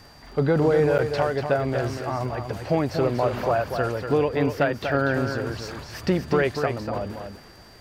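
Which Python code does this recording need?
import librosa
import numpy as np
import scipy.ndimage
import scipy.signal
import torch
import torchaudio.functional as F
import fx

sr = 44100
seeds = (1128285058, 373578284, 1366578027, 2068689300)

y = fx.fix_declick_ar(x, sr, threshold=6.5)
y = fx.notch(y, sr, hz=4700.0, q=30.0)
y = fx.fix_interpolate(y, sr, at_s=(0.98,), length_ms=8.5)
y = fx.fix_echo_inverse(y, sr, delay_ms=241, level_db=-7.0)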